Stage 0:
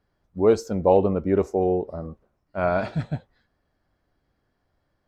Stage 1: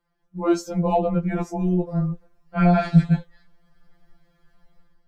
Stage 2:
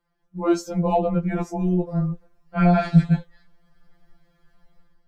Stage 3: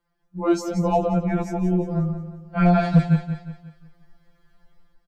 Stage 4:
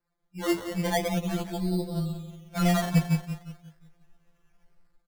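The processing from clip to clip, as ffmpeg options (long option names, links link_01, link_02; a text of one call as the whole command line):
ffmpeg -i in.wav -af "asubboost=boost=7:cutoff=120,dynaudnorm=framelen=200:gausssize=5:maxgain=11.5dB,afftfilt=real='re*2.83*eq(mod(b,8),0)':imag='im*2.83*eq(mod(b,8),0)':win_size=2048:overlap=0.75" out.wav
ffmpeg -i in.wav -af anull out.wav
ffmpeg -i in.wav -filter_complex "[0:a]asoftclip=type=hard:threshold=-9dB,asplit=2[link_01][link_02];[link_02]aecho=0:1:179|358|537|716|895:0.316|0.136|0.0585|0.0251|0.0108[link_03];[link_01][link_03]amix=inputs=2:normalize=0" out.wav
ffmpeg -i in.wav -af "acrusher=samples=14:mix=1:aa=0.000001:lfo=1:lforange=8.4:lforate=0.41,volume=-6.5dB" out.wav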